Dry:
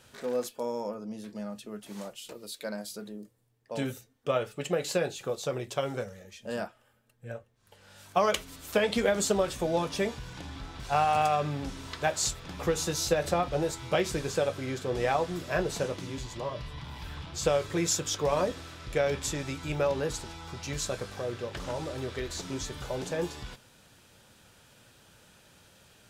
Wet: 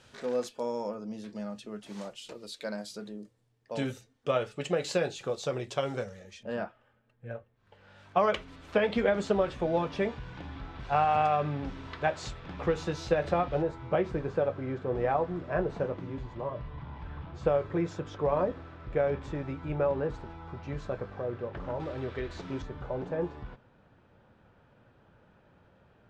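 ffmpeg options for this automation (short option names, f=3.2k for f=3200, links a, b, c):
-af "asetnsamples=n=441:p=0,asendcmd='6.43 lowpass f 2500;13.62 lowpass f 1400;21.8 lowpass f 2300;22.62 lowpass f 1300',lowpass=6.5k"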